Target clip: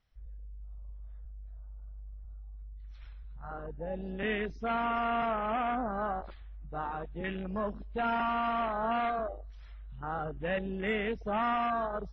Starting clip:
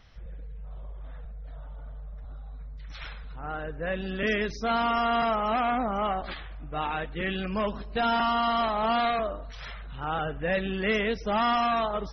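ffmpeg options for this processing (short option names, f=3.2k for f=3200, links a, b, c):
-af "afwtdn=0.0316,volume=-5dB" -ar 44100 -c:a wmav2 -b:a 32k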